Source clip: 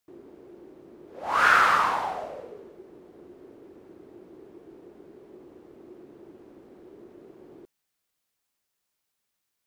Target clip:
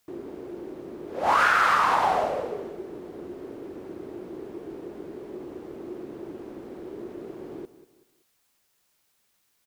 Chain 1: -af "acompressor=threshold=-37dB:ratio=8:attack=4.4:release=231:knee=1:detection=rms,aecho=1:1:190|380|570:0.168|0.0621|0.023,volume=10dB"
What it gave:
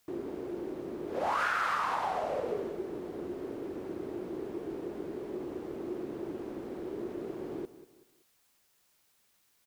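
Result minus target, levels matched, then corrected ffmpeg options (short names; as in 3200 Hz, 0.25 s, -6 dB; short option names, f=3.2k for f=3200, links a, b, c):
compressor: peak gain reduction +10 dB
-af "acompressor=threshold=-25.5dB:ratio=8:attack=4.4:release=231:knee=1:detection=rms,aecho=1:1:190|380|570:0.168|0.0621|0.023,volume=10dB"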